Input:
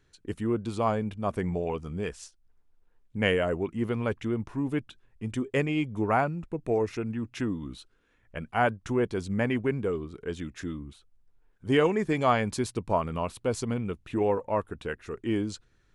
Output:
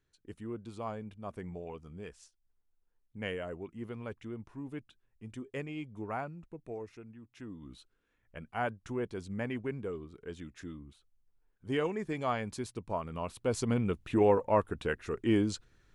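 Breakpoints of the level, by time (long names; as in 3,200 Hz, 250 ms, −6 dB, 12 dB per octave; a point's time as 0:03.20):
0:06.46 −12.5 dB
0:07.27 −20 dB
0:07.73 −9 dB
0:13.04 −9 dB
0:13.78 +1 dB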